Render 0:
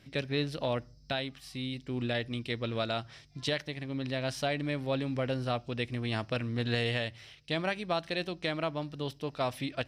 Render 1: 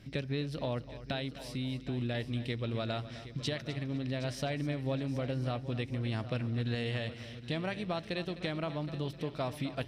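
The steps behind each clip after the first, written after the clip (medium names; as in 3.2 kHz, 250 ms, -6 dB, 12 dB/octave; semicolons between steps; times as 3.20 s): bass shelf 280 Hz +8 dB; compression 2.5:1, threshold -34 dBFS, peak gain reduction 8.5 dB; multi-head delay 256 ms, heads first and third, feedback 45%, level -14.5 dB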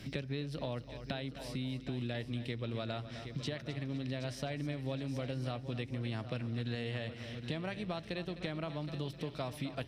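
three bands compressed up and down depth 70%; trim -4 dB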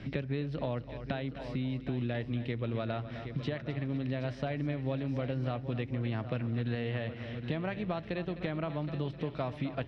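low-pass 2.4 kHz 12 dB/octave; trim +4.5 dB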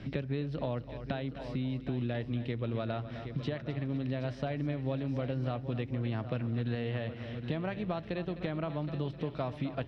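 peaking EQ 2.1 kHz -3 dB 0.76 oct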